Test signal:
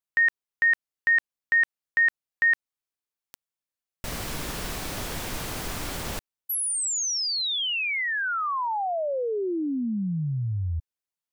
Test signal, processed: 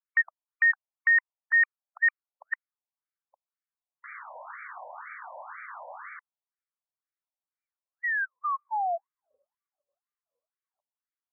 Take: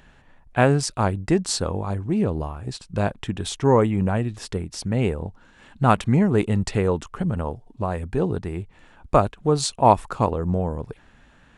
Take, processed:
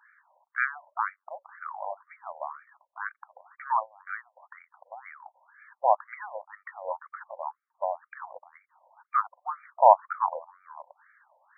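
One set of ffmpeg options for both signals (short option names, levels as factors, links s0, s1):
-af "afftfilt=real='re*between(b*sr/1024,720*pow(1700/720,0.5+0.5*sin(2*PI*2*pts/sr))/1.41,720*pow(1700/720,0.5+0.5*sin(2*PI*2*pts/sr))*1.41)':imag='im*between(b*sr/1024,720*pow(1700/720,0.5+0.5*sin(2*PI*2*pts/sr))/1.41,720*pow(1700/720,0.5+0.5*sin(2*PI*2*pts/sr))*1.41)':win_size=1024:overlap=0.75"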